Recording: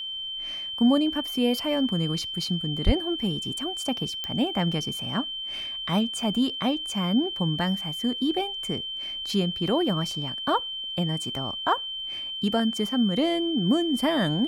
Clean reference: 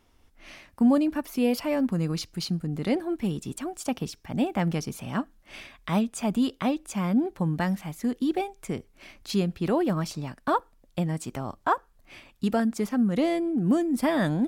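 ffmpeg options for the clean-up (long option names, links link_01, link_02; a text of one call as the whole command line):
ffmpeg -i in.wav -filter_complex "[0:a]adeclick=threshold=4,bandreject=frequency=3100:width=30,asplit=3[link_01][link_02][link_03];[link_01]afade=type=out:start_time=2.85:duration=0.02[link_04];[link_02]highpass=frequency=140:width=0.5412,highpass=frequency=140:width=1.3066,afade=type=in:start_time=2.85:duration=0.02,afade=type=out:start_time=2.97:duration=0.02[link_05];[link_03]afade=type=in:start_time=2.97:duration=0.02[link_06];[link_04][link_05][link_06]amix=inputs=3:normalize=0" out.wav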